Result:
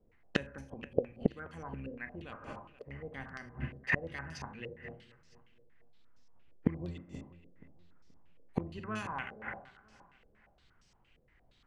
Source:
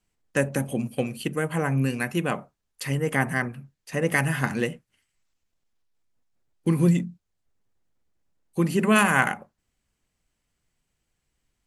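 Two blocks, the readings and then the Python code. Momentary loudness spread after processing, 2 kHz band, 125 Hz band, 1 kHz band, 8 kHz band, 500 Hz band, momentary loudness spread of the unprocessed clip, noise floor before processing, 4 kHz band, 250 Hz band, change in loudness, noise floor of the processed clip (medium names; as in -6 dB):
16 LU, -13.5 dB, -16.0 dB, -16.0 dB, -24.0 dB, -12.5 dB, 13 LU, -79 dBFS, -13.5 dB, -14.5 dB, -14.5 dB, -68 dBFS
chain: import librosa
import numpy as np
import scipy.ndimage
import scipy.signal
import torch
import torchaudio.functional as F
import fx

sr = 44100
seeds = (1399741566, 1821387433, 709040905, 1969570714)

y = fx.octave_divider(x, sr, octaves=1, level_db=-3.0)
y = fx.rev_schroeder(y, sr, rt60_s=0.5, comb_ms=33, drr_db=8.5)
y = fx.gate_flip(y, sr, shuts_db=-21.0, range_db=-29)
y = fx.echo_feedback(y, sr, ms=478, feedback_pct=29, wet_db=-17.5)
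y = fx.filter_held_lowpass(y, sr, hz=8.6, low_hz=500.0, high_hz=5400.0)
y = F.gain(torch.from_numpy(y), 6.0).numpy()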